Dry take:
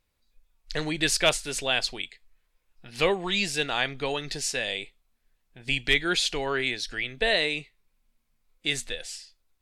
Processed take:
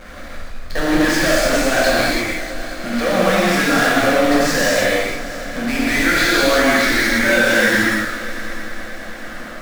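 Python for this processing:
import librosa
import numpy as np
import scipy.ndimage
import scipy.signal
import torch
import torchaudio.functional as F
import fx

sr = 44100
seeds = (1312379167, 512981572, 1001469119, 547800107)

p1 = fx.tape_stop_end(x, sr, length_s=2.72)
p2 = scipy.signal.sosfilt(scipy.signal.butter(2, 2200.0, 'lowpass', fs=sr, output='sos'), p1)
p3 = fx.low_shelf(p2, sr, hz=100.0, db=-11.0)
p4 = fx.over_compress(p3, sr, threshold_db=-30.0, ratio=-1.0)
p5 = p3 + F.gain(torch.from_numpy(p4), 0.0).numpy()
p6 = fx.fixed_phaser(p5, sr, hz=600.0, stages=8)
p7 = fx.power_curve(p6, sr, exponent=0.35)
p8 = fx.echo_heads(p7, sr, ms=212, heads='first and third', feedback_pct=69, wet_db=-17.5)
p9 = fx.rev_gated(p8, sr, seeds[0], gate_ms=360, shape='flat', drr_db=-8.0)
y = F.gain(torch.from_numpy(p9), -4.0).numpy()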